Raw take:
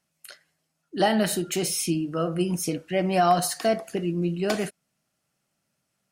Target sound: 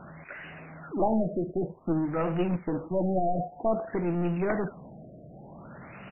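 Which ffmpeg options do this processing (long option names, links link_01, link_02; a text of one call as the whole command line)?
ffmpeg -i in.wav -af "aeval=exprs='val(0)+0.5*0.0178*sgn(val(0))':channel_layout=same,acontrast=82,aresample=8000,aeval=exprs='clip(val(0),-1,0.106)':channel_layout=same,aresample=44100,afftfilt=real='re*lt(b*sr/1024,700*pow(3000/700,0.5+0.5*sin(2*PI*0.53*pts/sr)))':imag='im*lt(b*sr/1024,700*pow(3000/700,0.5+0.5*sin(2*PI*0.53*pts/sr)))':win_size=1024:overlap=0.75,volume=-7.5dB" out.wav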